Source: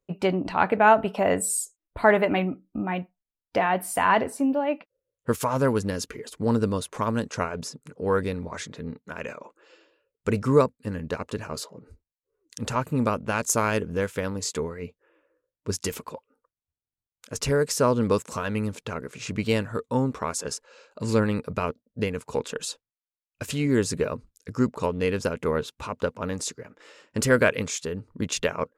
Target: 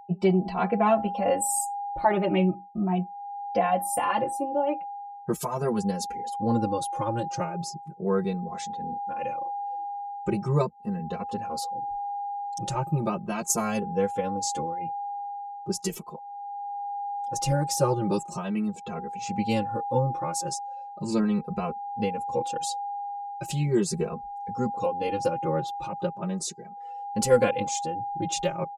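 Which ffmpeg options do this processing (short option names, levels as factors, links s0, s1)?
-filter_complex "[0:a]afftdn=nr=18:nf=-47,equalizer=f=1700:t=o:w=1.3:g=-9.5,aecho=1:1:5.7:0.91,aeval=exprs='val(0)+0.0355*sin(2*PI*810*n/s)':c=same,asplit=2[s0][s1];[s1]adelay=2.7,afreqshift=0.38[s2];[s0][s2]amix=inputs=2:normalize=1"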